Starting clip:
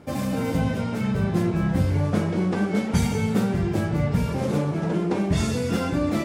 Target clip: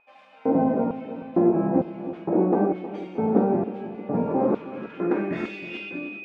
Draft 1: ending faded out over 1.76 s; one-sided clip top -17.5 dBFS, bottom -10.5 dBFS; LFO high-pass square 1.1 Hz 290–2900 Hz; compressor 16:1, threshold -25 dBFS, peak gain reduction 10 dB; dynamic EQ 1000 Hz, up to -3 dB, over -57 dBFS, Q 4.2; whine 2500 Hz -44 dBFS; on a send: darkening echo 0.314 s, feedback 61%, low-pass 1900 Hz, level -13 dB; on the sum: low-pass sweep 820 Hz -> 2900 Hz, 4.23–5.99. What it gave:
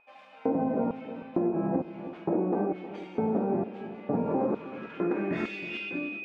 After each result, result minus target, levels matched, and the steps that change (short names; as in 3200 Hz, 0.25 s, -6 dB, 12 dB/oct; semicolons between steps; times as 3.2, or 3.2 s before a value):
compressor: peak gain reduction +10 dB; one-sided clip: distortion +5 dB
remove: compressor 16:1, threshold -25 dBFS, peak gain reduction 10 dB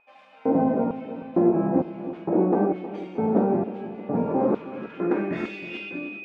one-sided clip: distortion +5 dB
change: one-sided clip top -9.5 dBFS, bottom -10.5 dBFS